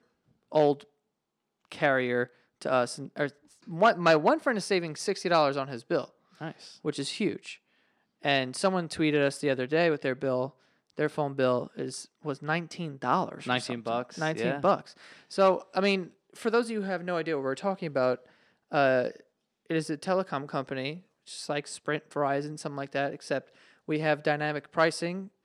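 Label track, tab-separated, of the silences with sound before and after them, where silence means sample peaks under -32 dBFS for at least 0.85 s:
0.740000	1.720000	silence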